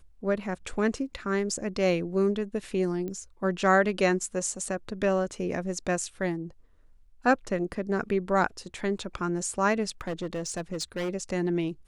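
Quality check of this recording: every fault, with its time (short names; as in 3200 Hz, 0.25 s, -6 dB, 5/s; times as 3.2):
3.08 pop -24 dBFS
10.01–11.1 clipped -27.5 dBFS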